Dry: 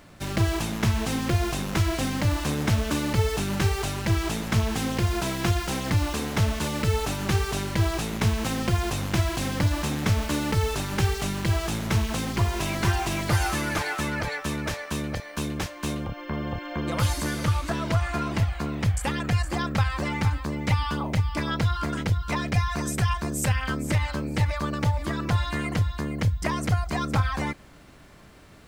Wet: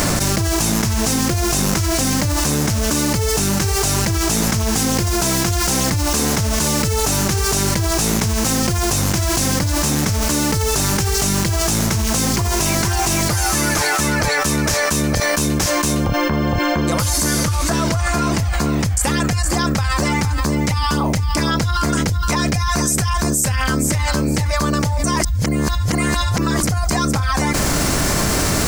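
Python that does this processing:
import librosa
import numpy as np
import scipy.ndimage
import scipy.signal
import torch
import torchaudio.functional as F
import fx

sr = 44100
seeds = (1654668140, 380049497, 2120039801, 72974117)

y = fx.edit(x, sr, fx.reverse_span(start_s=25.04, length_s=1.59), tone=tone)
y = fx.high_shelf_res(y, sr, hz=4400.0, db=8.0, q=1.5)
y = fx.env_flatten(y, sr, amount_pct=100)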